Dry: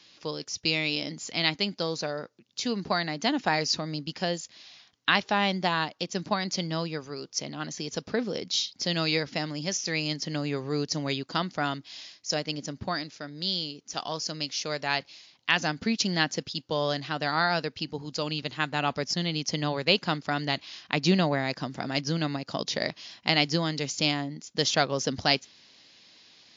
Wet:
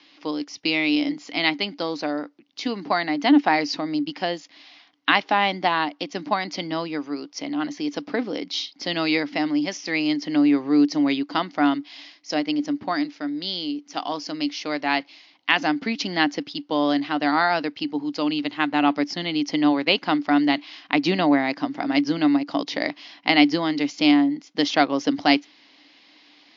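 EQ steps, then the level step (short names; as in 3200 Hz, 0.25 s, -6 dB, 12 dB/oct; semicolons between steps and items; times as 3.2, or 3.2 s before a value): speaker cabinet 200–5400 Hz, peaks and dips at 290 Hz +4 dB, 740 Hz +4 dB, 2100 Hz +7 dB, 3000 Hz +4 dB; bell 290 Hz +14.5 dB 0.25 oct; bell 980 Hz +6.5 dB 1.3 oct; -1.0 dB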